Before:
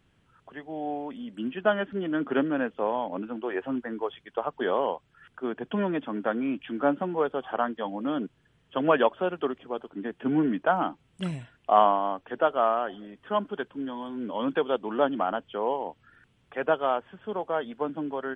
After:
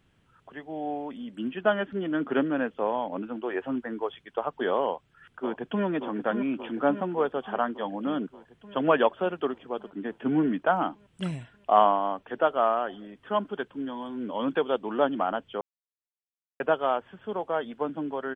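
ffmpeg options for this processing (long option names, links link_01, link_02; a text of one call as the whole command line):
ffmpeg -i in.wav -filter_complex "[0:a]asplit=2[link_01][link_02];[link_02]afade=type=in:start_time=4.85:duration=0.01,afade=type=out:start_time=5.84:duration=0.01,aecho=0:1:580|1160|1740|2320|2900|3480|4060|4640|5220|5800|6380:0.398107|0.278675|0.195073|0.136551|0.0955855|0.0669099|0.0468369|0.0327858|0.0229501|0.0160651|0.0112455[link_03];[link_01][link_03]amix=inputs=2:normalize=0,asplit=3[link_04][link_05][link_06];[link_04]atrim=end=15.61,asetpts=PTS-STARTPTS,afade=type=out:start_time=15.606:duration=0.004:curve=hsin[link_07];[link_05]atrim=start=15.61:end=16.6,asetpts=PTS-STARTPTS,volume=0[link_08];[link_06]atrim=start=16.6,asetpts=PTS-STARTPTS,afade=type=in:duration=0.004:curve=hsin[link_09];[link_07][link_08][link_09]concat=n=3:v=0:a=1" out.wav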